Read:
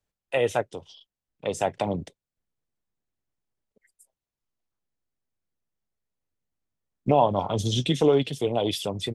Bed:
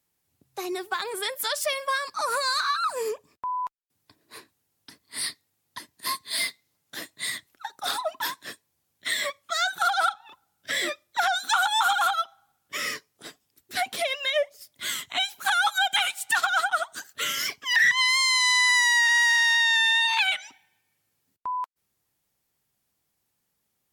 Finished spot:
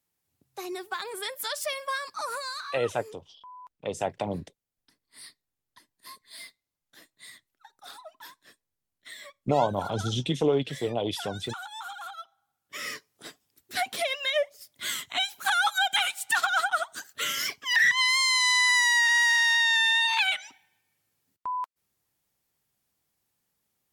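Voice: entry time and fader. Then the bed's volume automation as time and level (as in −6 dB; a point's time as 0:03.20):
2.40 s, −4.0 dB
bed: 0:02.17 −4.5 dB
0:02.93 −17 dB
0:12.05 −17 dB
0:13.13 −1.5 dB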